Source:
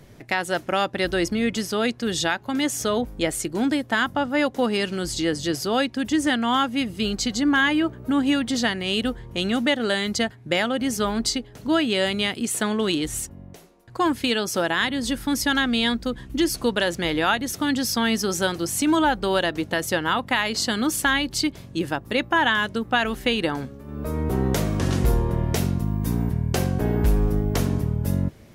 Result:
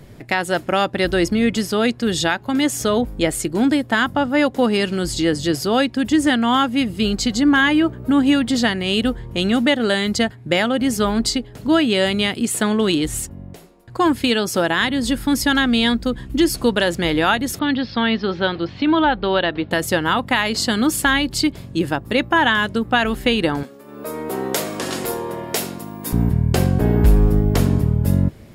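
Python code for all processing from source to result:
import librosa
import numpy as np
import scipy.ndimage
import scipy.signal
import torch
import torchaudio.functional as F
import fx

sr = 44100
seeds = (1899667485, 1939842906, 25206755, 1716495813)

y = fx.chain(x, sr, fx.steep_lowpass(hz=4200.0, slope=48),
    fx.low_shelf(hz=360.0, db=-4.0), at=(17.59, 19.71))
y = fx.chain(y, sr, fx.highpass(hz=400.0, slope=12),
    fx.high_shelf(hz=3800.0, db=6.0), at=(23.63, 26.13))
y = fx.low_shelf(y, sr, hz=390.0, db=3.5)
y = fx.notch(y, sr, hz=6000.0, q=10.0)
y = F.gain(torch.from_numpy(y), 3.5).numpy()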